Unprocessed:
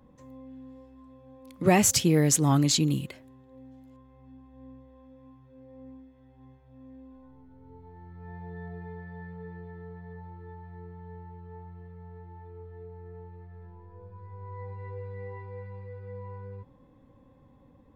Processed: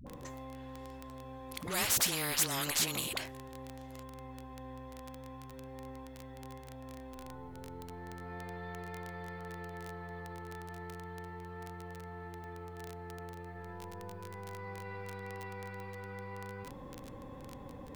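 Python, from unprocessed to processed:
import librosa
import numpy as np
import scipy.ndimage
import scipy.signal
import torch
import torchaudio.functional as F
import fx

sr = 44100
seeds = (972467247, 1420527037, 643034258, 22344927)

y = fx.vibrato(x, sr, rate_hz=0.37, depth_cents=8.7)
y = fx.dispersion(y, sr, late='highs', ms=69.0, hz=420.0)
y = fx.dmg_crackle(y, sr, seeds[0], per_s=17.0, level_db=-45.0)
y = fx.spectral_comp(y, sr, ratio=4.0)
y = F.gain(torch.from_numpy(y), -6.5).numpy()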